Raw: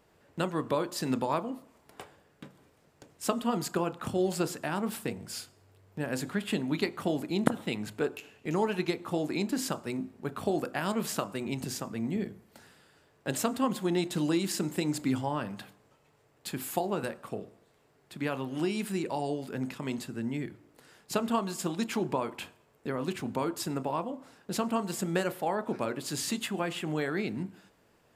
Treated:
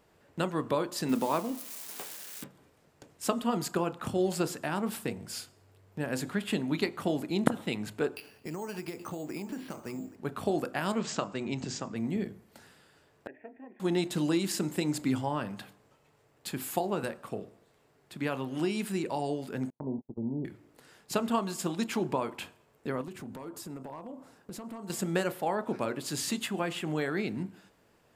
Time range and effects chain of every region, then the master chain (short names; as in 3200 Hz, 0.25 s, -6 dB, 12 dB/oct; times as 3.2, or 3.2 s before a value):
1.09–2.44 switching spikes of -32 dBFS + resonant low shelf 140 Hz -9.5 dB, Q 1.5
8.16–10.16 compressor 5:1, threshold -34 dBFS + echo 0.825 s -15.5 dB + careless resampling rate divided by 6×, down filtered, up hold
10.98–11.96 steep low-pass 7800 Hz 72 dB/oct + notches 50/100/150 Hz
13.27–13.8 vocal tract filter e + fixed phaser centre 790 Hz, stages 8
19.7–20.45 steep low-pass 950 Hz 72 dB/oct + gate -39 dBFS, range -41 dB
23.01–24.9 compressor 4:1, threshold -38 dBFS + bell 3100 Hz -6 dB 2.1 oct + hard clip -34.5 dBFS
whole clip: dry